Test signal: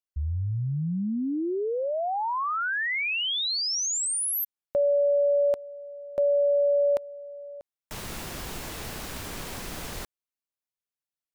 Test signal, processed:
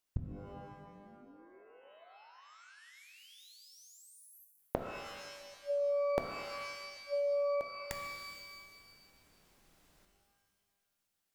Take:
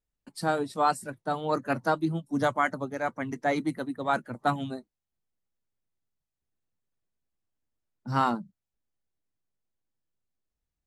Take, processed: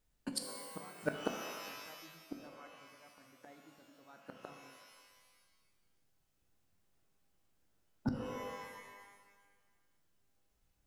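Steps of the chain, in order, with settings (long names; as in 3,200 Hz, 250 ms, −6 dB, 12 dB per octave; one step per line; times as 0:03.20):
gate with flip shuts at −29 dBFS, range −41 dB
reverb with rising layers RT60 1.4 s, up +12 semitones, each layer −2 dB, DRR 4.5 dB
level +8 dB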